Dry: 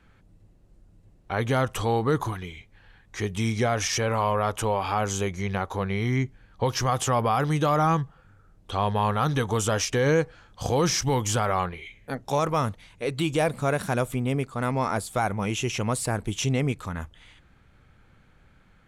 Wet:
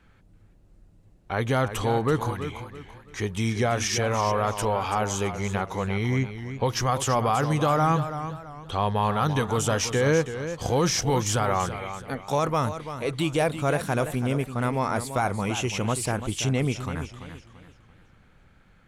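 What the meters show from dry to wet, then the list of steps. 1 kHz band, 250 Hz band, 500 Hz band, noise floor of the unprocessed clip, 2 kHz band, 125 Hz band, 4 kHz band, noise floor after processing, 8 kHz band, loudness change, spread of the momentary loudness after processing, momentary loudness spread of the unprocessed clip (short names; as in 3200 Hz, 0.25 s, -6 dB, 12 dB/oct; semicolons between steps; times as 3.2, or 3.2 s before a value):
+0.5 dB, +0.5 dB, +0.5 dB, -58 dBFS, +0.5 dB, +0.5 dB, +0.5 dB, -56 dBFS, +0.5 dB, 0.0 dB, 10 LU, 10 LU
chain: warbling echo 0.335 s, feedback 34%, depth 87 cents, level -10.5 dB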